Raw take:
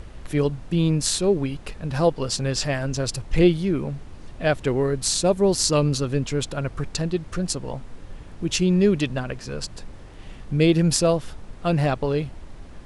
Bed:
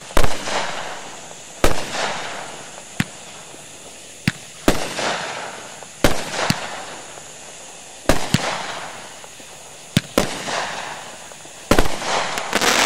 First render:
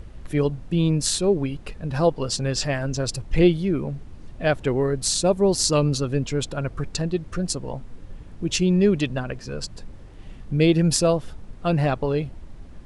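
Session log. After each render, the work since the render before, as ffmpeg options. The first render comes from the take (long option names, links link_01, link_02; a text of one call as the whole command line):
ffmpeg -i in.wav -af "afftdn=noise_reduction=6:noise_floor=-41" out.wav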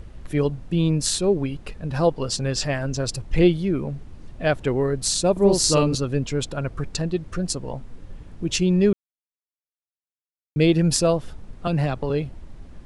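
ffmpeg -i in.wav -filter_complex "[0:a]asettb=1/sr,asplit=3[link_01][link_02][link_03];[link_01]atrim=end=5.324[link_04];[link_02]atrim=start=5.32:end=5.95,asetpts=PTS-STARTPTS,afade=type=in:duration=0.004:curve=qsin,afade=type=out:start_time=0.626:duration=0.004:curve=qsin,asplit=2[link_05][link_06];[link_06]adelay=45,volume=-2.5dB[link_07];[link_05][link_07]amix=inputs=2:normalize=0,atrim=end_sample=27783[link_08];[link_03]atrim=start=5.946[link_09];[link_04][link_08]acrossfade=duration=0.004:curve1=hsin:curve2=qsin[link_10];[link_10][link_09]acrossfade=duration=0.004:curve1=qsin:curve2=hsin,asettb=1/sr,asplit=3[link_11][link_12][link_13];[link_11]atrim=end=11.674[link_14];[link_12]atrim=start=11.67:end=12.1,asetpts=PTS-STARTPTS,afade=type=in:duration=0.004:curve=qsin,afade=type=out:start_time=0.426:duration=0.004:curve=qsin,acrossover=split=190|3000[link_15][link_16][link_17];[link_16]acompressor=threshold=-22dB:ratio=6:attack=3.2:release=140:knee=2.83:detection=peak[link_18];[link_15][link_18][link_17]amix=inputs=3:normalize=0[link_19];[link_13]atrim=start=12.096[link_20];[link_14][link_19]acrossfade=duration=0.004:curve1=hsin:curve2=qsin[link_21];[link_21][link_20]acrossfade=duration=0.004:curve1=qsin:curve2=hsin,asplit=3[link_22][link_23][link_24];[link_22]atrim=end=8.93,asetpts=PTS-STARTPTS,afade=type=out:start_time=8.926:duration=0.004:curve=hsin[link_25];[link_23]atrim=start=8.93:end=10.56,asetpts=PTS-STARTPTS,volume=0[link_26];[link_24]atrim=start=10.56,asetpts=PTS-STARTPTS,afade=type=in:duration=0.004:curve=hsin[link_27];[link_25][link_26][link_27]concat=n=3:v=0:a=1" out.wav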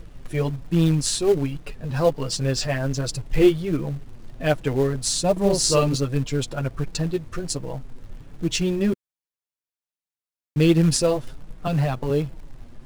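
ffmpeg -i in.wav -filter_complex "[0:a]flanger=delay=6:depth=2.7:regen=-3:speed=1.3:shape=triangular,asplit=2[link_01][link_02];[link_02]acrusher=bits=2:mode=log:mix=0:aa=0.000001,volume=-10.5dB[link_03];[link_01][link_03]amix=inputs=2:normalize=0" out.wav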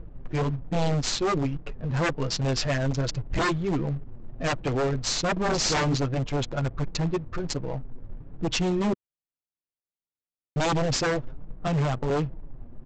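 ffmpeg -i in.wav -af "adynamicsmooth=sensitivity=7:basefreq=700,aresample=16000,aeval=exprs='0.112*(abs(mod(val(0)/0.112+3,4)-2)-1)':channel_layout=same,aresample=44100" out.wav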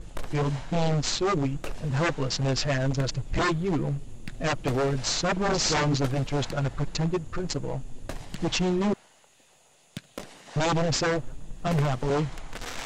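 ffmpeg -i in.wav -i bed.wav -filter_complex "[1:a]volume=-21.5dB[link_01];[0:a][link_01]amix=inputs=2:normalize=0" out.wav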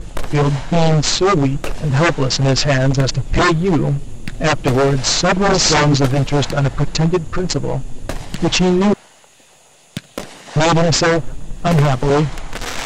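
ffmpeg -i in.wav -af "volume=11.5dB" out.wav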